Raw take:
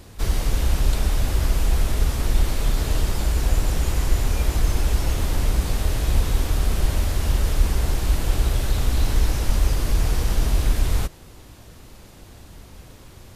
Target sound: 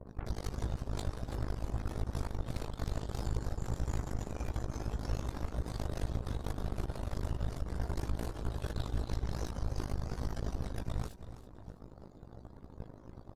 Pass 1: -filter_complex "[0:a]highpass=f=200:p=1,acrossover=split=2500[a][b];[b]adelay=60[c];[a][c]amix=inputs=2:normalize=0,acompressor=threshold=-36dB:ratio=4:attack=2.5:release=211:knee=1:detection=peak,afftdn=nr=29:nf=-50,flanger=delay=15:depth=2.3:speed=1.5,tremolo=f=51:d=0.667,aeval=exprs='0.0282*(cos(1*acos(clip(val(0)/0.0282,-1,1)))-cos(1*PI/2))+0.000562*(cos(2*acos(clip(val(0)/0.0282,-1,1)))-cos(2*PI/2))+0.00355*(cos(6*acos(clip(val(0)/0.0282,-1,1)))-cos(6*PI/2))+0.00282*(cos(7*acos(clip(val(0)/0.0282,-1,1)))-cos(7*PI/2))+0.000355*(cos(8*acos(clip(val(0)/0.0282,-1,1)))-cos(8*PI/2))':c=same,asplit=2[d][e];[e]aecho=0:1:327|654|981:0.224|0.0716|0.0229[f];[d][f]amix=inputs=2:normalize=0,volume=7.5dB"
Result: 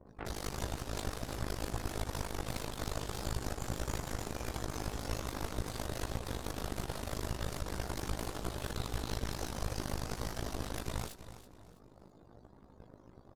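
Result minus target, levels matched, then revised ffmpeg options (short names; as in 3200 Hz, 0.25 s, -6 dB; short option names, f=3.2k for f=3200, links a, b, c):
125 Hz band -3.0 dB
-filter_complex "[0:a]highpass=f=54:p=1,acrossover=split=2500[a][b];[b]adelay=60[c];[a][c]amix=inputs=2:normalize=0,acompressor=threshold=-36dB:ratio=4:attack=2.5:release=211:knee=1:detection=peak,afftdn=nr=29:nf=-50,flanger=delay=15:depth=2.3:speed=1.5,tremolo=f=51:d=0.667,aeval=exprs='0.0282*(cos(1*acos(clip(val(0)/0.0282,-1,1)))-cos(1*PI/2))+0.000562*(cos(2*acos(clip(val(0)/0.0282,-1,1)))-cos(2*PI/2))+0.00355*(cos(6*acos(clip(val(0)/0.0282,-1,1)))-cos(6*PI/2))+0.00282*(cos(7*acos(clip(val(0)/0.0282,-1,1)))-cos(7*PI/2))+0.000355*(cos(8*acos(clip(val(0)/0.0282,-1,1)))-cos(8*PI/2))':c=same,asplit=2[d][e];[e]aecho=0:1:327|654|981:0.224|0.0716|0.0229[f];[d][f]amix=inputs=2:normalize=0,volume=7.5dB"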